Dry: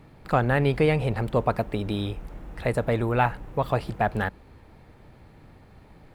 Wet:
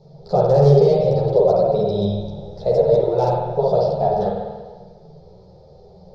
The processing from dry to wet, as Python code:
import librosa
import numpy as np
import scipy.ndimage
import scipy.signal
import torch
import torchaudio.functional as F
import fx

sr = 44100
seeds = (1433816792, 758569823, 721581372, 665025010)

p1 = fx.band_shelf(x, sr, hz=4900.0, db=10.5, octaves=1.3)
p2 = fx.notch(p1, sr, hz=1100.0, q=7.5)
p3 = p2 + fx.echo_single(p2, sr, ms=87, db=-20.0, dry=0)
p4 = fx.rev_spring(p3, sr, rt60_s=1.4, pass_ms=(49,), chirp_ms=50, drr_db=-2.5)
p5 = (np.mod(10.0 ** (10.0 / 20.0) * p4 + 1.0, 2.0) - 1.0) / 10.0 ** (10.0 / 20.0)
p6 = p4 + (p5 * 10.0 ** (-12.0 / 20.0))
p7 = fx.curve_eq(p6, sr, hz=(110.0, 170.0, 280.0, 390.0, 610.0, 1100.0, 1700.0, 2900.0, 5200.0, 8400.0), db=(0, 14, -20, 13, 13, -3, -19, -15, 7, -18))
p8 = fx.ensemble(p7, sr)
y = p8 * 10.0 ** (-3.5 / 20.0)